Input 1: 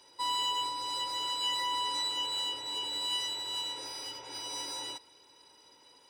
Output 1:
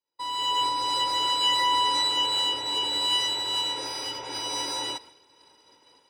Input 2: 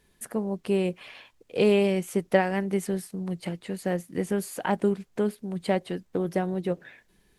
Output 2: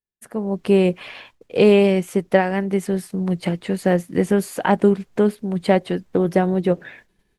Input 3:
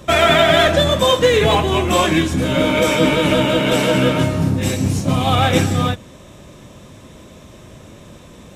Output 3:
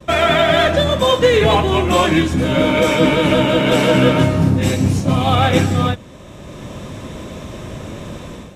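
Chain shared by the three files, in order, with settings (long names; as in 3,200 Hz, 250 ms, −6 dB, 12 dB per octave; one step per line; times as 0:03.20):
high-shelf EQ 4,900 Hz −6.5 dB
automatic gain control gain up to 11.5 dB
downward expander −43 dBFS
level −1 dB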